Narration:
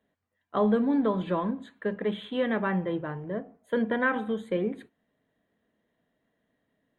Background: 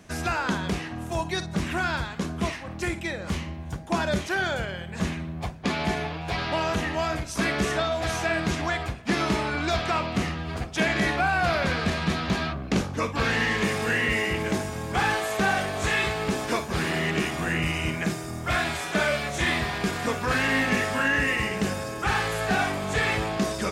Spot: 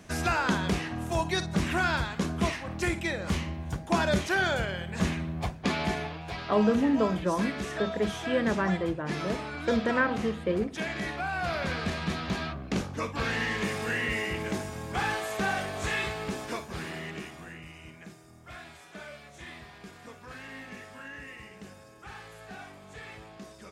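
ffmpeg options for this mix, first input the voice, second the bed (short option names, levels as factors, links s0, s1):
-filter_complex "[0:a]adelay=5950,volume=1[s0];[1:a]volume=1.58,afade=t=out:st=5.46:d=0.96:silence=0.334965,afade=t=in:st=11.18:d=0.57:silence=0.630957,afade=t=out:st=15.92:d=1.7:silence=0.188365[s1];[s0][s1]amix=inputs=2:normalize=0"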